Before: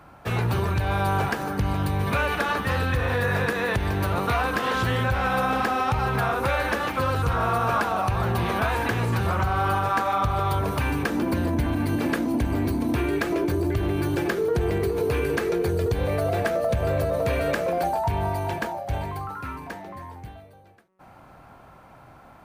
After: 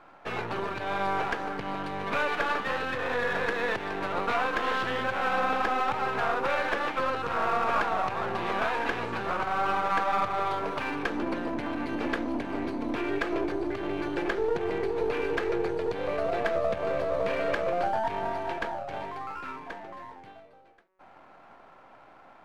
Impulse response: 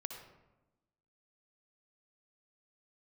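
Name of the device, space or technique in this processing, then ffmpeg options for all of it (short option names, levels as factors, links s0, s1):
crystal radio: -af "highpass=310,lowpass=3500,aeval=exprs='if(lt(val(0),0),0.447*val(0),val(0))':c=same"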